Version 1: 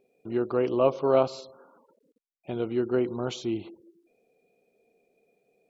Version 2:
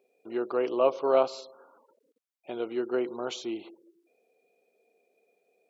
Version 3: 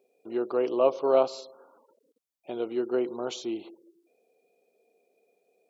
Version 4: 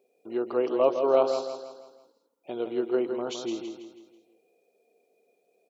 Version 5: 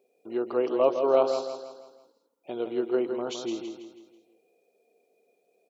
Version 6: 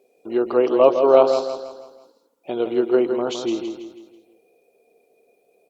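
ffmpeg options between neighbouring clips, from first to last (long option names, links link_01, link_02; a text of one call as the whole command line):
ffmpeg -i in.wav -af "highpass=380" out.wav
ffmpeg -i in.wav -af "equalizer=frequency=1800:width_type=o:width=1.5:gain=-6,volume=2dB" out.wav
ffmpeg -i in.wav -af "aecho=1:1:163|326|489|652|815:0.422|0.181|0.078|0.0335|0.0144" out.wav
ffmpeg -i in.wav -af anull out.wav
ffmpeg -i in.wav -af "volume=8.5dB" -ar 48000 -c:a libopus -b:a 48k out.opus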